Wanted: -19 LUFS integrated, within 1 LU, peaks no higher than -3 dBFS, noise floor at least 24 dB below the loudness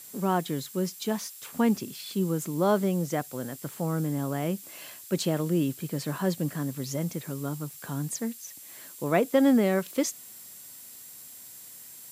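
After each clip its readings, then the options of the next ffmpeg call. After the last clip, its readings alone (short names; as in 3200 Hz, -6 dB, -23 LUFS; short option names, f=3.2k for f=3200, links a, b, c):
steady tone 7600 Hz; tone level -53 dBFS; noise floor -47 dBFS; noise floor target -53 dBFS; loudness -29.0 LUFS; peak -9.5 dBFS; loudness target -19.0 LUFS
-> -af "bandreject=f=7.6k:w=30"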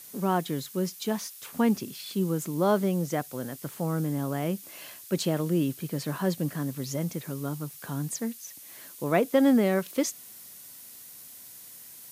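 steady tone none; noise floor -47 dBFS; noise floor target -53 dBFS
-> -af "afftdn=nr=6:nf=-47"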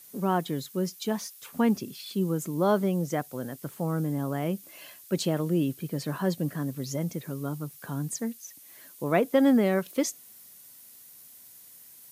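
noise floor -51 dBFS; noise floor target -53 dBFS
-> -af "afftdn=nr=6:nf=-51"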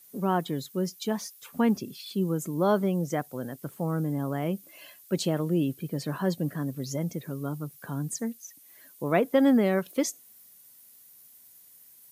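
noise floor -55 dBFS; loudness -29.0 LUFS; peak -10.0 dBFS; loudness target -19.0 LUFS
-> -af "volume=10dB,alimiter=limit=-3dB:level=0:latency=1"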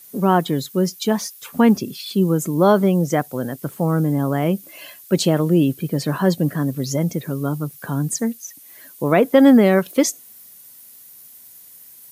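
loudness -19.0 LUFS; peak -3.0 dBFS; noise floor -45 dBFS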